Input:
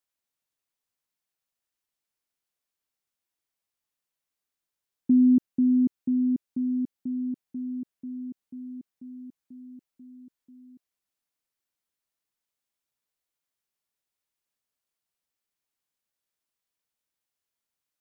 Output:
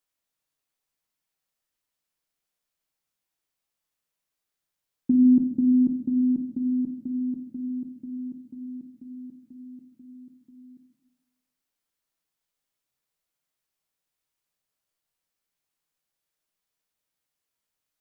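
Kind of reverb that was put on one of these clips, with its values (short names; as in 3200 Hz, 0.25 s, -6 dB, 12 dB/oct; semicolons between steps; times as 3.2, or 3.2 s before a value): shoebox room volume 190 m³, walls mixed, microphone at 0.57 m; gain +1.5 dB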